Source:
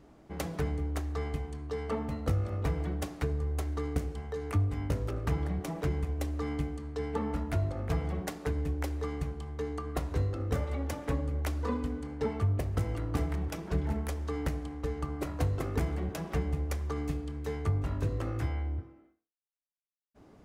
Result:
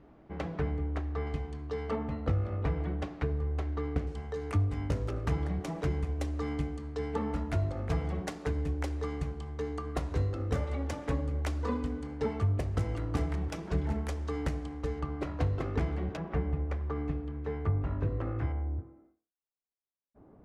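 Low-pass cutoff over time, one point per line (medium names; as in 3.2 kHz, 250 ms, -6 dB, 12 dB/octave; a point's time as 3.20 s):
2.7 kHz
from 1.27 s 5.2 kHz
from 1.96 s 3.1 kHz
from 4.07 s 8.2 kHz
from 15.00 s 4.1 kHz
from 16.17 s 2 kHz
from 18.52 s 1.1 kHz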